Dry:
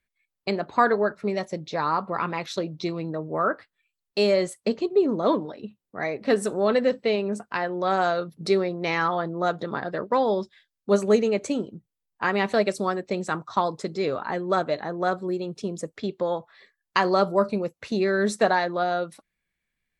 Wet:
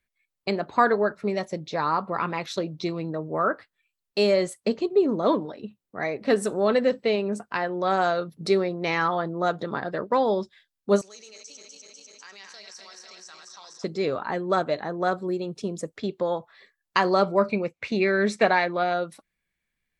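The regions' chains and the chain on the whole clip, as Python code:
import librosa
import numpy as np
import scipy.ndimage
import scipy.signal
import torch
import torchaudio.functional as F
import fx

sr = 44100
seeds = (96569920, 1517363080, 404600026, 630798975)

y = fx.chain(x, sr, fx.reverse_delay_fb(ms=124, feedback_pct=78, wet_db=-7.5),
    fx.bandpass_q(hz=5600.0, q=7.1),
    fx.env_flatten(amount_pct=70), at=(11.01, 13.84))
y = fx.chain(y, sr, fx.lowpass(hz=6200.0, slope=12),
    fx.peak_eq(hz=2300.0, db=13.5, octaves=0.35), at=(17.23, 18.94))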